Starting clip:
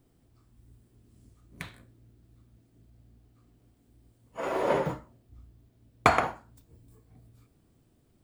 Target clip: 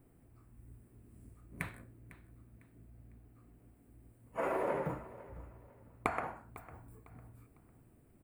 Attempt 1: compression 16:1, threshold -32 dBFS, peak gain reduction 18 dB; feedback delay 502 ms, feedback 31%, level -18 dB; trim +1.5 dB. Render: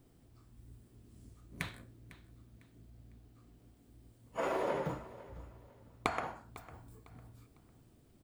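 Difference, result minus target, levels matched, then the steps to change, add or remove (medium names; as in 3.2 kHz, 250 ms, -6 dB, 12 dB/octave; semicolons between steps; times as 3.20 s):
4 kHz band +10.5 dB
add after compression: high-order bell 4.6 kHz -12.5 dB 1.4 oct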